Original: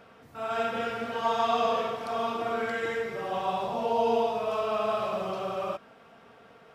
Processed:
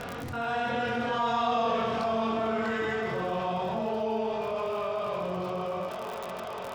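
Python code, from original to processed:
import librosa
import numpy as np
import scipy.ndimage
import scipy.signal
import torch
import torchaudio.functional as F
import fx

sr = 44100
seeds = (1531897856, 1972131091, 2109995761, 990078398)

y = fx.doppler_pass(x, sr, speed_mps=17, closest_m=11.0, pass_at_s=1.72)
y = scipy.signal.sosfilt(scipy.signal.butter(2, 6700.0, 'lowpass', fs=sr, output='sos'), y)
y = fx.low_shelf(y, sr, hz=210.0, db=9.5)
y = fx.hum_notches(y, sr, base_hz=50, count=9)
y = fx.doubler(y, sr, ms=22.0, db=-3.5)
y = fx.echo_thinned(y, sr, ms=485, feedback_pct=77, hz=260.0, wet_db=-19)
y = fx.dmg_crackle(y, sr, seeds[0], per_s=61.0, level_db=-49.0)
y = fx.env_flatten(y, sr, amount_pct=70)
y = y * librosa.db_to_amplitude(-4.5)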